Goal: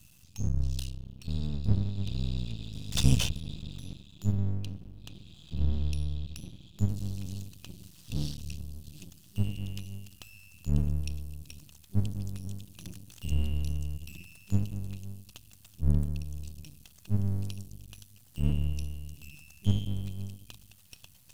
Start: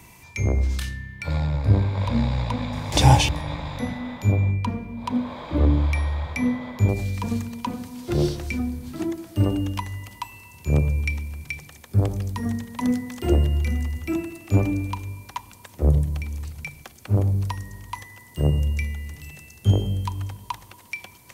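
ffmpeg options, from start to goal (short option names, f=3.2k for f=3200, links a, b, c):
-af "afftfilt=real='re*(1-between(b*sr/4096,200,2500))':imag='im*(1-between(b*sr/4096,200,2500))':win_size=4096:overlap=0.75,aeval=exprs='max(val(0),0)':c=same,volume=-3.5dB"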